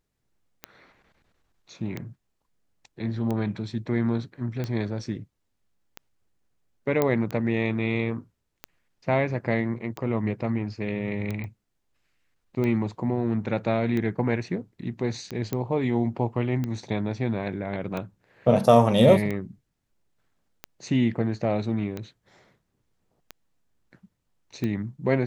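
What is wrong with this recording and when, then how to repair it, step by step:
tick 45 rpm -18 dBFS
7.02 pop -10 dBFS
11.44 pop -25 dBFS
15.53 pop -14 dBFS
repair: de-click

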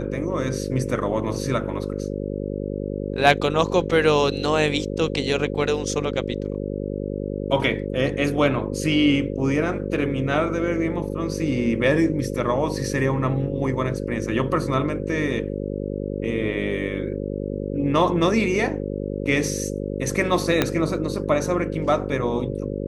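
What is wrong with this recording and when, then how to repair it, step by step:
buzz 50 Hz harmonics 11 -28 dBFS
20.62 pop -4 dBFS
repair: de-click; de-hum 50 Hz, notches 11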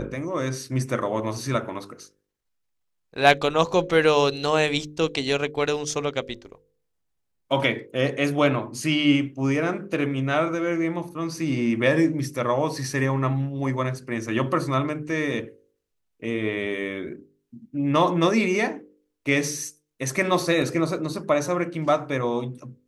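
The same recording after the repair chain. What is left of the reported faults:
20.62 pop

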